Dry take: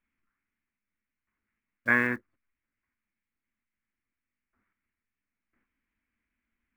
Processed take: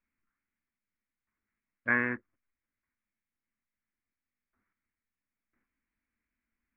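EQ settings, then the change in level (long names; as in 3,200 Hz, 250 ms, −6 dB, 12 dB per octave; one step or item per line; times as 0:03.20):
low-pass filter 2,600 Hz 24 dB per octave
−3.5 dB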